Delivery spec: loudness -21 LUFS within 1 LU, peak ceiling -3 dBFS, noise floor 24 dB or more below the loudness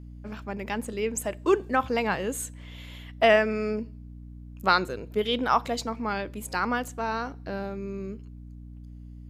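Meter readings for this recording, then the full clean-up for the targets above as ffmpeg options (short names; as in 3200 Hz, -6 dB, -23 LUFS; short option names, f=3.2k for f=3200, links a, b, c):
hum 60 Hz; harmonics up to 300 Hz; hum level -41 dBFS; loudness -27.5 LUFS; peak -7.5 dBFS; loudness target -21.0 LUFS
-> -af "bandreject=f=60:t=h:w=6,bandreject=f=120:t=h:w=6,bandreject=f=180:t=h:w=6,bandreject=f=240:t=h:w=6,bandreject=f=300:t=h:w=6"
-af "volume=6.5dB,alimiter=limit=-3dB:level=0:latency=1"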